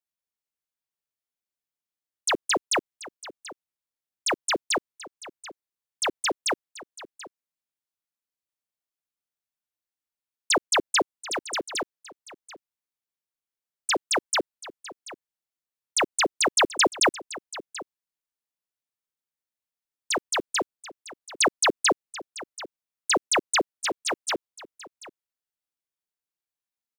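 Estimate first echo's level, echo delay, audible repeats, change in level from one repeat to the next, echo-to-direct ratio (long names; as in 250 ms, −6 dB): −17.0 dB, 734 ms, 1, repeats not evenly spaced, −17.0 dB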